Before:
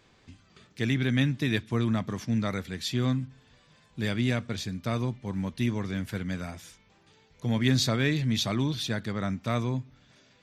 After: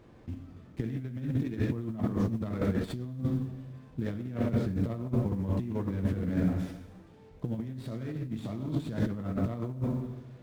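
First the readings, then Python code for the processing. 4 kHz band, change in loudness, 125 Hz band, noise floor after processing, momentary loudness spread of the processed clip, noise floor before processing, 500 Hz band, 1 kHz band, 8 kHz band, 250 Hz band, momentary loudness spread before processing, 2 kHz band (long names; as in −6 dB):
−20.0 dB, −4.0 dB, −2.5 dB, −54 dBFS, 11 LU, −62 dBFS, −2.5 dB, −7.0 dB, below −15 dB, −2.0 dB, 9 LU, −14.0 dB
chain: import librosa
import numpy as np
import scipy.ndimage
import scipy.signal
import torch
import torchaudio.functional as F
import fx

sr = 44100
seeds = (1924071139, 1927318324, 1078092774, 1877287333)

y = fx.level_steps(x, sr, step_db=17)
y = fx.rev_plate(y, sr, seeds[0], rt60_s=1.1, hf_ratio=0.85, predelay_ms=0, drr_db=2.0)
y = fx.over_compress(y, sr, threshold_db=-38.0, ratio=-0.5)
y = fx.mod_noise(y, sr, seeds[1], snr_db=19)
y = fx.tilt_shelf(y, sr, db=9.5, hz=1200.0)
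y = fx.running_max(y, sr, window=5)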